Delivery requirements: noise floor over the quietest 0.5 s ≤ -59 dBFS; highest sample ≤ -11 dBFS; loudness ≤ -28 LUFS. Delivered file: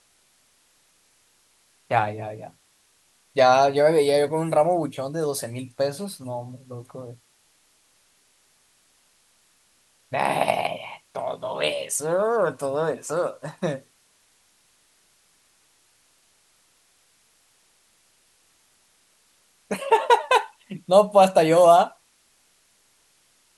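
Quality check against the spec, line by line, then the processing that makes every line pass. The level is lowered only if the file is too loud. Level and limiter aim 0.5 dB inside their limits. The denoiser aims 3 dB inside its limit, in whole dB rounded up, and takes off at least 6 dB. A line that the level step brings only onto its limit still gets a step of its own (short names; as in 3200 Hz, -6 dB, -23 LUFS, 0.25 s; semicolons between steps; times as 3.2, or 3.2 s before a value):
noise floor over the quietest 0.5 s -63 dBFS: OK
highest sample -4.0 dBFS: fail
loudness -22.0 LUFS: fail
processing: gain -6.5 dB; limiter -11.5 dBFS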